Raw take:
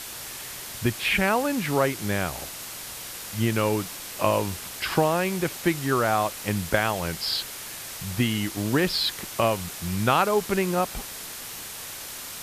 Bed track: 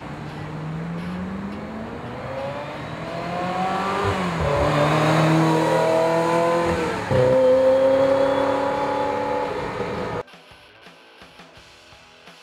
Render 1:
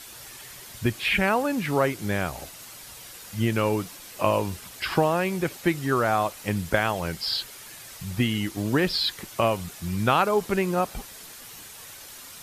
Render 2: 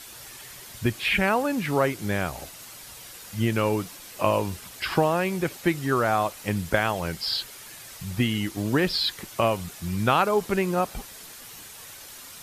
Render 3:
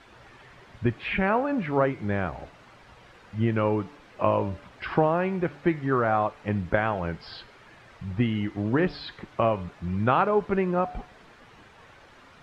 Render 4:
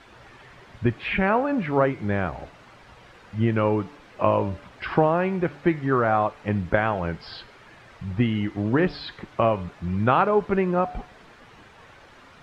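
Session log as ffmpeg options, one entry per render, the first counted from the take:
ffmpeg -i in.wav -af "afftdn=noise_reduction=8:noise_floor=-38" out.wav
ffmpeg -i in.wav -af anull out.wav
ffmpeg -i in.wav -af "lowpass=1800,bandreject=frequency=145.4:width_type=h:width=4,bandreject=frequency=290.8:width_type=h:width=4,bandreject=frequency=436.2:width_type=h:width=4,bandreject=frequency=581.6:width_type=h:width=4,bandreject=frequency=727:width_type=h:width=4,bandreject=frequency=872.4:width_type=h:width=4,bandreject=frequency=1017.8:width_type=h:width=4,bandreject=frequency=1163.2:width_type=h:width=4,bandreject=frequency=1308.6:width_type=h:width=4,bandreject=frequency=1454:width_type=h:width=4,bandreject=frequency=1599.4:width_type=h:width=4,bandreject=frequency=1744.8:width_type=h:width=4,bandreject=frequency=1890.2:width_type=h:width=4,bandreject=frequency=2035.6:width_type=h:width=4,bandreject=frequency=2181:width_type=h:width=4,bandreject=frequency=2326.4:width_type=h:width=4,bandreject=frequency=2471.8:width_type=h:width=4,bandreject=frequency=2617.2:width_type=h:width=4,bandreject=frequency=2762.6:width_type=h:width=4,bandreject=frequency=2908:width_type=h:width=4,bandreject=frequency=3053.4:width_type=h:width=4,bandreject=frequency=3198.8:width_type=h:width=4,bandreject=frequency=3344.2:width_type=h:width=4,bandreject=frequency=3489.6:width_type=h:width=4,bandreject=frequency=3635:width_type=h:width=4,bandreject=frequency=3780.4:width_type=h:width=4,bandreject=frequency=3925.8:width_type=h:width=4,bandreject=frequency=4071.2:width_type=h:width=4,bandreject=frequency=4216.6:width_type=h:width=4,bandreject=frequency=4362:width_type=h:width=4,bandreject=frequency=4507.4:width_type=h:width=4,bandreject=frequency=4652.8:width_type=h:width=4,bandreject=frequency=4798.2:width_type=h:width=4,bandreject=frequency=4943.6:width_type=h:width=4,bandreject=frequency=5089:width_type=h:width=4,bandreject=frequency=5234.4:width_type=h:width=4,bandreject=frequency=5379.8:width_type=h:width=4" out.wav
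ffmpeg -i in.wav -af "volume=2.5dB" out.wav

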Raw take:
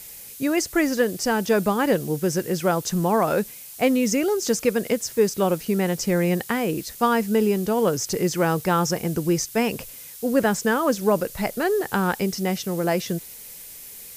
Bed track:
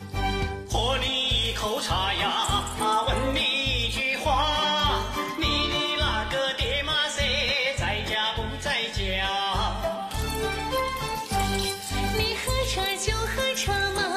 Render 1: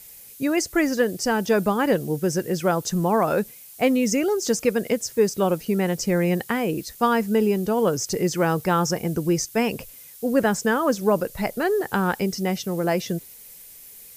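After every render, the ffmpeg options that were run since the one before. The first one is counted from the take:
ffmpeg -i in.wav -af "afftdn=noise_reduction=6:noise_floor=-41" out.wav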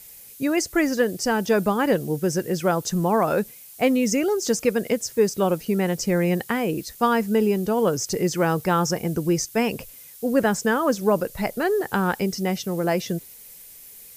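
ffmpeg -i in.wav -af anull out.wav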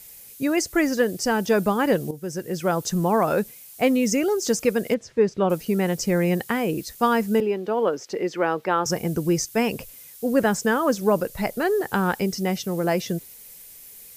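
ffmpeg -i in.wav -filter_complex "[0:a]asettb=1/sr,asplit=3[link_01][link_02][link_03];[link_01]atrim=end=4.944[link_04];[link_02]atrim=start=4.94:end=5.5,asetpts=PTS-STARTPTS,afade=type=in:duration=0.004:curve=qsin,afade=type=out:start_time=0.556:duration=0.004:curve=qsin,lowpass=2900[link_05];[link_03]atrim=start=5.496[link_06];[link_04][link_05]acrossfade=duration=0.004:curve1=hsin:curve2=qsin[link_07];[link_07][link_06]acrossfade=duration=0.004:curve1=qsin:curve2=hsin,asettb=1/sr,asplit=3[link_08][link_09][link_10];[link_08]atrim=end=7.404[link_11];[link_09]atrim=start=7.4:end=8.86,asetpts=PTS-STARTPTS,afade=type=in:duration=0.004:curve=qsin,afade=type=out:start_time=1.456:duration=0.004:curve=qsin,acrossover=split=250 3900:gain=0.0708 1 0.1[link_12][link_13][link_14];[link_12][link_13][link_14]amix=inputs=3:normalize=0[link_15];[link_10]atrim=start=8.856[link_16];[link_11][link_15]acrossfade=duration=0.004:curve1=hsin:curve2=qsin[link_17];[link_17][link_16]acrossfade=duration=0.004:curve1=qsin:curve2=hsin,asplit=2[link_18][link_19];[link_18]atrim=end=2.11,asetpts=PTS-STARTPTS,afade=type=out:start_time=2.106:duration=0.004:curve=hsin:silence=0.223872[link_20];[link_19]atrim=start=2.11,asetpts=PTS-STARTPTS,afade=type=in:duration=0.72:silence=0.223872[link_21];[link_20][link_21]concat=n=2:v=0:a=1" out.wav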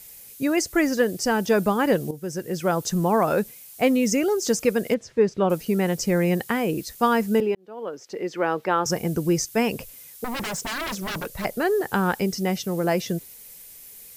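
ffmpeg -i in.wav -filter_complex "[0:a]asettb=1/sr,asplit=3[link_01][link_02][link_03];[link_01]atrim=end=10.244[link_04];[link_02]atrim=start=10.24:end=11.45,asetpts=PTS-STARTPTS,afade=type=in:duration=0.004:curve=qsin,afade=type=out:start_time=1.206:duration=0.004:curve=qsin,aeval=exprs='0.0596*(abs(mod(val(0)/0.0596+3,4)-2)-1)':channel_layout=same[link_05];[link_03]atrim=start=11.446[link_06];[link_04][link_05]acrossfade=duration=0.004:curve1=hsin:curve2=qsin[link_07];[link_07][link_06]acrossfade=duration=0.004:curve1=qsin:curve2=hsin,asplit=2[link_08][link_09];[link_08]atrim=end=7.55,asetpts=PTS-STARTPTS,afade=type=out:start_time=7.546:duration=0.004:curve=hsin[link_10];[link_09]atrim=start=7.55,asetpts=PTS-STARTPTS,afade=type=in:duration=1.01[link_11];[link_10][link_11]concat=n=2:v=0:a=1" out.wav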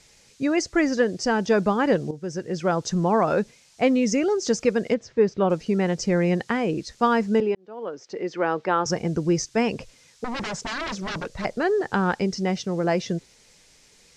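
ffmpeg -i in.wav -af "lowpass=frequency=6400:width=0.5412,lowpass=frequency=6400:width=1.3066,equalizer=frequency=2900:width_type=o:width=0.77:gain=-2" out.wav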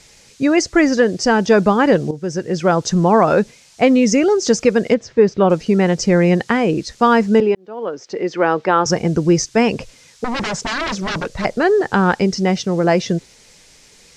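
ffmpeg -i in.wav -af "volume=8dB,alimiter=limit=-2dB:level=0:latency=1" out.wav

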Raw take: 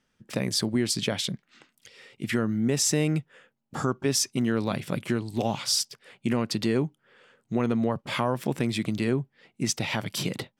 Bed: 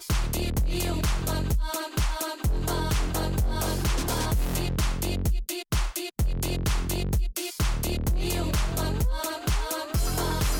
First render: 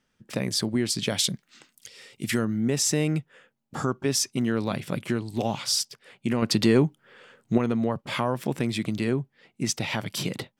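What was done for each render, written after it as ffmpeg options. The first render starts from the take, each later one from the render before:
ffmpeg -i in.wav -filter_complex "[0:a]asettb=1/sr,asplit=3[link_01][link_02][link_03];[link_01]atrim=end=1.074[link_04];[link_02]atrim=start=1.07:end=2.45,asetpts=PTS-STARTPTS,afade=type=in:duration=0.004:curve=qsin,afade=type=out:start_time=1.376:duration=0.004:curve=qsin,bass=frequency=250:gain=1,treble=frequency=4000:gain=10[link_05];[link_03]atrim=start=2.446[link_06];[link_04][link_05]acrossfade=duration=0.004:curve1=hsin:curve2=qsin[link_07];[link_07][link_06]acrossfade=duration=0.004:curve1=qsin:curve2=hsin,asettb=1/sr,asplit=3[link_08][link_09][link_10];[link_08]atrim=end=6.424[link_11];[link_09]atrim=start=6.42:end=7.58,asetpts=PTS-STARTPTS,afade=type=in:duration=0.004:curve=qsin,afade=type=out:start_time=1.156:duration=0.004:curve=qsin,acontrast=49[link_12];[link_10]atrim=start=7.576[link_13];[link_11][link_12]acrossfade=duration=0.004:curve1=hsin:curve2=qsin[link_14];[link_14][link_13]acrossfade=duration=0.004:curve1=qsin:curve2=hsin" out.wav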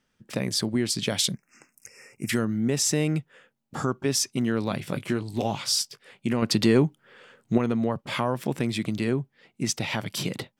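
ffmpeg -i in.wav -filter_complex "[0:a]asettb=1/sr,asplit=3[link_01][link_02][link_03];[link_01]atrim=end=1.344[link_04];[link_02]atrim=start=1.34:end=2.29,asetpts=PTS-STARTPTS,afade=type=in:duration=0.004:curve=qsin,afade=type=out:start_time=0.946:duration=0.004:curve=qsin,asuperstop=centerf=3700:order=12:qfactor=1.5[link_05];[link_03]atrim=start=2.286[link_06];[link_04][link_05]acrossfade=duration=0.004:curve1=hsin:curve2=qsin[link_07];[link_07][link_06]acrossfade=duration=0.004:curve1=qsin:curve2=hsin,asettb=1/sr,asplit=3[link_08][link_09][link_10];[link_08]atrim=end=4.794[link_11];[link_09]atrim=start=4.79:end=6.27,asetpts=PTS-STARTPTS,afade=type=in:duration=0.004:curve=qsin,afade=type=out:start_time=1.476:duration=0.004:curve=qsin,asplit=2[link_12][link_13];[link_13]adelay=20,volume=-11dB[link_14];[link_12][link_14]amix=inputs=2:normalize=0,atrim=end_sample=65268[link_15];[link_10]atrim=start=6.266[link_16];[link_11][link_15]acrossfade=duration=0.004:curve1=hsin:curve2=qsin[link_17];[link_17][link_16]acrossfade=duration=0.004:curve1=qsin:curve2=hsin" out.wav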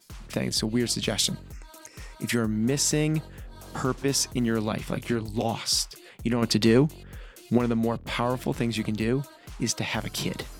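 ffmpeg -i in.wav -i bed.wav -filter_complex "[1:a]volume=-17.5dB[link_01];[0:a][link_01]amix=inputs=2:normalize=0" out.wav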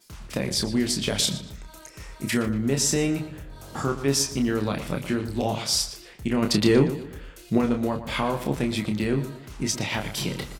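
ffmpeg -i in.wav -filter_complex "[0:a]asplit=2[link_01][link_02];[link_02]adelay=29,volume=-5.5dB[link_03];[link_01][link_03]amix=inputs=2:normalize=0,asplit=2[link_04][link_05];[link_05]adelay=118,lowpass=frequency=4500:poles=1,volume=-12dB,asplit=2[link_06][link_07];[link_07]adelay=118,lowpass=frequency=4500:poles=1,volume=0.39,asplit=2[link_08][link_09];[link_09]adelay=118,lowpass=frequency=4500:poles=1,volume=0.39,asplit=2[link_10][link_11];[link_11]adelay=118,lowpass=frequency=4500:poles=1,volume=0.39[link_12];[link_04][link_06][link_08][link_10][link_12]amix=inputs=5:normalize=0" out.wav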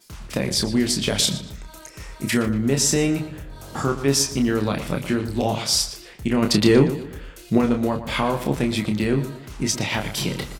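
ffmpeg -i in.wav -af "volume=3.5dB" out.wav

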